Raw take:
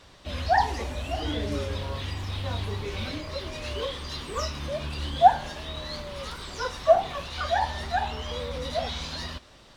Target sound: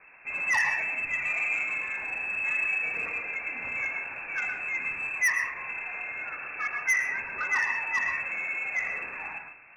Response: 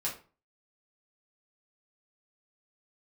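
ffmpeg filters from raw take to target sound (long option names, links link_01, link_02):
-filter_complex "[0:a]lowpass=frequency=2300:width_type=q:width=0.5098,lowpass=frequency=2300:width_type=q:width=0.6013,lowpass=frequency=2300:width_type=q:width=0.9,lowpass=frequency=2300:width_type=q:width=2.563,afreqshift=-2700,asoftclip=type=tanh:threshold=-20.5dB,asplit=2[link_01][link_02];[1:a]atrim=start_sample=2205,highshelf=frequency=4300:gain=-11,adelay=106[link_03];[link_02][link_03]afir=irnorm=-1:irlink=0,volume=-6dB[link_04];[link_01][link_04]amix=inputs=2:normalize=0"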